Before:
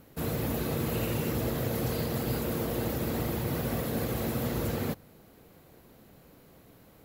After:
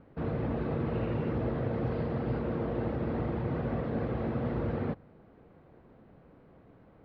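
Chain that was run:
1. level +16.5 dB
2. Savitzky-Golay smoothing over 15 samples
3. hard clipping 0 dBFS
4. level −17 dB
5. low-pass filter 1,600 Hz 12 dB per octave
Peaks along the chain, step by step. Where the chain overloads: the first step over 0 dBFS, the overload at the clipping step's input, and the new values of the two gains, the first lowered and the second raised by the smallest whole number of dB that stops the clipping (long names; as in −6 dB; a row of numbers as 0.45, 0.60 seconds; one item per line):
−2.0, −2.5, −2.5, −19.5, −20.0 dBFS
no step passes full scale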